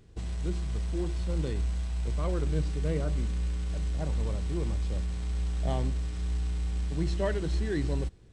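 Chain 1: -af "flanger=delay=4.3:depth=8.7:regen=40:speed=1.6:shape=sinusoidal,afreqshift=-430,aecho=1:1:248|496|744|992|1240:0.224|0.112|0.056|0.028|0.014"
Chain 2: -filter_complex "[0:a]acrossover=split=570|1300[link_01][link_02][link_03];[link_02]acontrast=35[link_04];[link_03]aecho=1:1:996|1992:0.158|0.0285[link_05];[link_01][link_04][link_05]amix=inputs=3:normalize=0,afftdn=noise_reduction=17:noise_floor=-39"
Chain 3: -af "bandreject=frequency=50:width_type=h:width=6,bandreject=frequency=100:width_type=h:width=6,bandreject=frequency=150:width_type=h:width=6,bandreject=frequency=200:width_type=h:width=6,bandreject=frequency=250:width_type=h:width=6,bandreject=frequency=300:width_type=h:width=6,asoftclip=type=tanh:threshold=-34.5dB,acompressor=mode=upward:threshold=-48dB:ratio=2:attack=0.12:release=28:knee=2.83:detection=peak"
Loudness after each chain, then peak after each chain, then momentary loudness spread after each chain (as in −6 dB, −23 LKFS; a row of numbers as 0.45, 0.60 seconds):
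−35.5, −31.5, −39.0 LKFS; −22.0, −14.0, −34.5 dBFS; 3, 4, 1 LU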